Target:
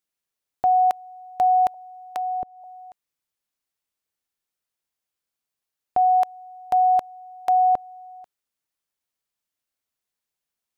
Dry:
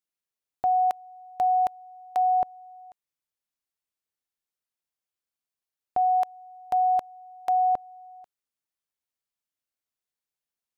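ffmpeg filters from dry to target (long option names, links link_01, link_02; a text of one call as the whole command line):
ffmpeg -i in.wav -filter_complex "[0:a]asettb=1/sr,asplit=3[link_01][link_02][link_03];[link_01]atrim=end=1.744[link_04];[link_02]atrim=start=1.74:end=2.64,asetpts=PTS-STARTPTS,afade=type=in:duration=0.004:curve=qsin,afade=type=out:start_time=0.896:duration=0.004:curve=qsin,acrossover=split=480[link_05][link_06];[link_06]acompressor=threshold=-36dB:ratio=6[link_07];[link_05][link_07]amix=inputs=2:normalize=0[link_08];[link_03]atrim=start=2.636[link_09];[link_04][link_08]acrossfade=duration=0.004:curve1=hsin:curve2=qsin[link_10];[link_10][link_09]acrossfade=duration=0.004:curve1=qsin:curve2=hsin,volume=4.5dB" out.wav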